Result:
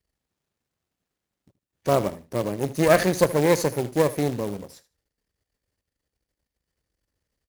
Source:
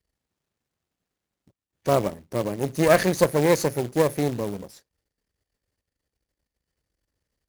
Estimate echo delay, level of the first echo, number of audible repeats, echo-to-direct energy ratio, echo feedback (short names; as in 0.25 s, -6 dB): 77 ms, -16.5 dB, 2, -16.5 dB, 16%